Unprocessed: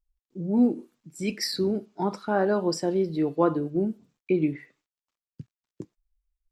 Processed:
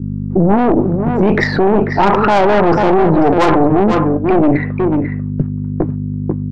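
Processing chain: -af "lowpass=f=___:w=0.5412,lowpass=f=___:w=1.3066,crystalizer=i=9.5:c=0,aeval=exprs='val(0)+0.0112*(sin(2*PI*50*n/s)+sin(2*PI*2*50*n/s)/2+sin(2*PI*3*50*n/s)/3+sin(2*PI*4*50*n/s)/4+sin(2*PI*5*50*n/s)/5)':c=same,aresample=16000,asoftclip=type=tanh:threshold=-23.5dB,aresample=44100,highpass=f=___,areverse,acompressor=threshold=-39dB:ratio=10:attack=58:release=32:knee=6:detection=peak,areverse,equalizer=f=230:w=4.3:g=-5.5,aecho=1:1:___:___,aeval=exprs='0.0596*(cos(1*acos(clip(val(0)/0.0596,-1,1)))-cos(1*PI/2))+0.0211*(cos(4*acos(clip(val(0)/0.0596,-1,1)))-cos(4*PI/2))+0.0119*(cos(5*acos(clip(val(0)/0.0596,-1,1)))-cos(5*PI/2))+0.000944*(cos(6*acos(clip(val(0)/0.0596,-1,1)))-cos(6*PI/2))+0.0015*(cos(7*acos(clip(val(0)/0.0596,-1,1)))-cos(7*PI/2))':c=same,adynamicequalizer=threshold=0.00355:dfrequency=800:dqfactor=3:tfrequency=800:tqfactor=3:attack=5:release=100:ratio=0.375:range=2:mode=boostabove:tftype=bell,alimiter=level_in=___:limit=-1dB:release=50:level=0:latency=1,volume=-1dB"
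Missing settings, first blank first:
1.2k, 1.2k, 170, 492, 0.335, 27dB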